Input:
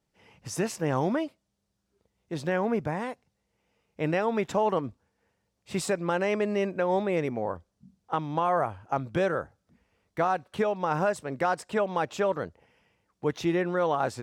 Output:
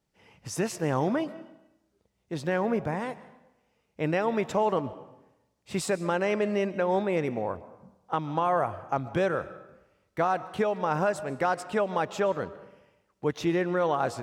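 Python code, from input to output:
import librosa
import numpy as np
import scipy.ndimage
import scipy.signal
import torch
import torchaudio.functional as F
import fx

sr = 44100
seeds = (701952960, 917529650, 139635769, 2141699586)

y = fx.rev_freeverb(x, sr, rt60_s=0.94, hf_ratio=0.8, predelay_ms=90, drr_db=15.5)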